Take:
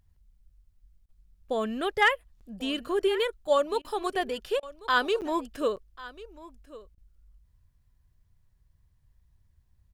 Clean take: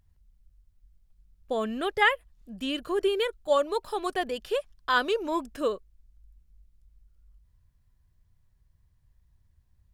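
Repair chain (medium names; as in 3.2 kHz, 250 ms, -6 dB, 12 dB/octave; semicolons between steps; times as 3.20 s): clip repair -12.5 dBFS; interpolate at 2.40/5.21/5.76 s, 8.1 ms; interpolate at 1.06/3.82/4.60/6.95 s, 26 ms; inverse comb 1092 ms -18.5 dB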